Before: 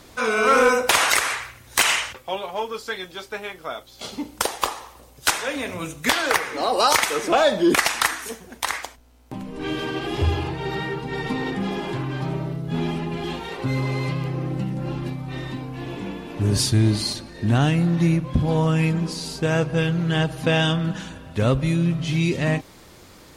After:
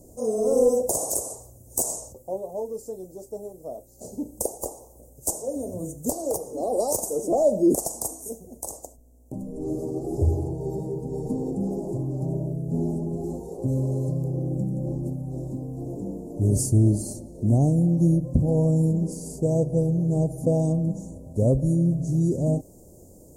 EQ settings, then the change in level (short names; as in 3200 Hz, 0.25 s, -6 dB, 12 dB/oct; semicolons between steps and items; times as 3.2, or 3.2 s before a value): elliptic band-stop 620–7200 Hz, stop band 50 dB; 0.0 dB